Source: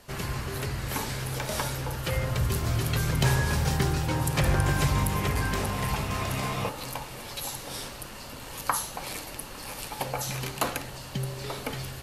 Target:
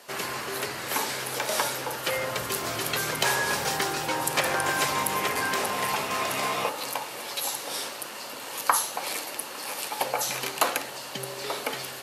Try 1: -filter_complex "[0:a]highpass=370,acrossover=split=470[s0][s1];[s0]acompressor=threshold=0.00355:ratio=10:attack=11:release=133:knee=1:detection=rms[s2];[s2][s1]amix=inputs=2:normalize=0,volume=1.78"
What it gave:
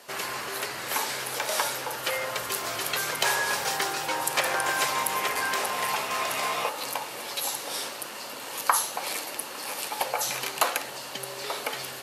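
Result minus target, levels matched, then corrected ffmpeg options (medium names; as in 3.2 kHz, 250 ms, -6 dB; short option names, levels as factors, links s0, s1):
compression: peak gain reduction +8.5 dB
-filter_complex "[0:a]highpass=370,acrossover=split=470[s0][s1];[s0]acompressor=threshold=0.0106:ratio=10:attack=11:release=133:knee=1:detection=rms[s2];[s2][s1]amix=inputs=2:normalize=0,volume=1.78"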